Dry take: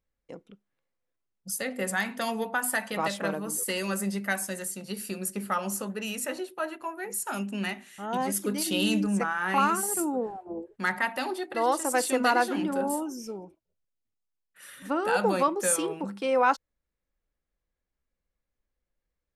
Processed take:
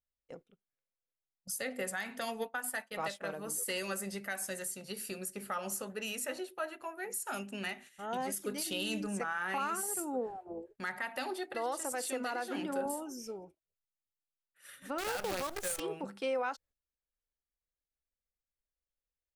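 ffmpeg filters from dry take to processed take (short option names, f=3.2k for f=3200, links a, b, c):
-filter_complex "[0:a]asplit=3[a][b][c];[a]afade=t=out:st=2.2:d=0.02[d];[b]agate=range=-33dB:threshold=-29dB:ratio=3:release=100:detection=peak,afade=t=in:st=2.2:d=0.02,afade=t=out:st=3.38:d=0.02[e];[c]afade=t=in:st=3.38:d=0.02[f];[d][e][f]amix=inputs=3:normalize=0,asettb=1/sr,asplit=3[g][h][i];[g]atrim=end=11.924[j];[h]atrim=start=11.92:end=12.86,asetpts=PTS-STARTPTS,afade=t=in:d=0.004:c=qsin,afade=t=out:st=0.936:d=0.004:c=qsin,highpass=130[k];[i]atrim=start=12.856[l];[j][k]acrossfade=d=0.004:c1=hsin:c2=qsin[m];[m][l]acrossfade=d=0.004:c1=qsin:c2=hsin,asettb=1/sr,asplit=3[n][o][p];[n]atrim=end=14.984[q];[o]atrim=start=14.98:end=15.8,asetpts=PTS-STARTPTS,afade=t=in:d=0.004:c=qsin,afade=t=out:st=0.816:d=0.004:c=qsin,acrusher=bits=5:dc=4:mix=0:aa=0.000001[r];[p]atrim=start=15.796[s];[q][r]acrossfade=d=0.004:c1=hsin:c2=qsin[t];[t][s]acrossfade=d=0.004:c1=qsin:c2=hsin,agate=range=-10dB:threshold=-47dB:ratio=16:detection=peak,equalizer=f=200:t=o:w=0.33:g=-8,equalizer=f=315:t=o:w=0.33:g=-6,equalizer=f=1k:t=o:w=0.33:g=-5,alimiter=limit=-22.5dB:level=0:latency=1:release=151,volume=-3.5dB"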